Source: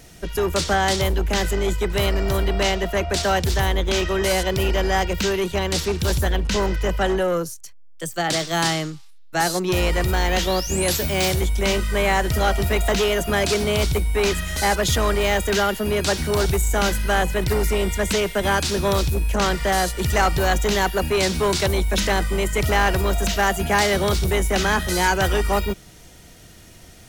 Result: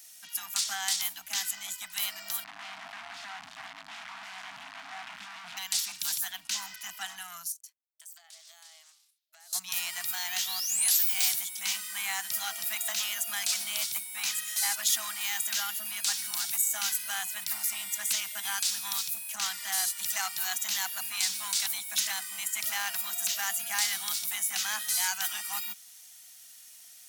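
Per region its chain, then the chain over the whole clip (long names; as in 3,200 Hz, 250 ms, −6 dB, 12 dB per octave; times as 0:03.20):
0:02.44–0:05.57: sign of each sample alone + low-pass filter 1,700 Hz + highs frequency-modulated by the lows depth 0.35 ms
0:07.52–0:09.53: four-pole ladder high-pass 420 Hz, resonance 30% + downward compressor 16 to 1, threshold −40 dBFS + highs frequency-modulated by the lows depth 0.17 ms
whole clip: Bessel high-pass filter 180 Hz, order 2; first difference; brick-wall band-stop 300–630 Hz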